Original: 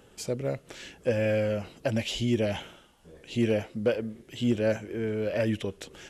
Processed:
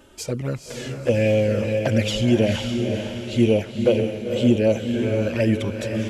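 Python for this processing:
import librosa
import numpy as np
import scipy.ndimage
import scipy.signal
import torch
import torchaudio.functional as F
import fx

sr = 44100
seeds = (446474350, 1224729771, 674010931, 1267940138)

y = fx.env_flanger(x, sr, rest_ms=3.4, full_db=-21.5)
y = fx.echo_diffused(y, sr, ms=505, feedback_pct=41, wet_db=-5.0)
y = F.gain(torch.from_numpy(y), 8.5).numpy()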